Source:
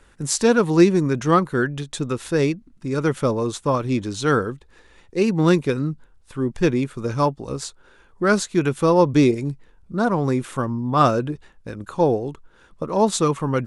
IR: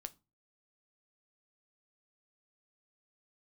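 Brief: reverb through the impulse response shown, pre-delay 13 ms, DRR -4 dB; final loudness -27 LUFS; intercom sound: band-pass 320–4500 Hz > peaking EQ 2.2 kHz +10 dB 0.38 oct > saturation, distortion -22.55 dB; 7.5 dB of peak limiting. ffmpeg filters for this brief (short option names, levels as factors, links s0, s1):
-filter_complex "[0:a]alimiter=limit=0.299:level=0:latency=1,asplit=2[s0][s1];[1:a]atrim=start_sample=2205,adelay=13[s2];[s1][s2]afir=irnorm=-1:irlink=0,volume=2.66[s3];[s0][s3]amix=inputs=2:normalize=0,highpass=320,lowpass=4500,equalizer=f=2200:t=o:w=0.38:g=10,asoftclip=threshold=0.562,volume=0.447"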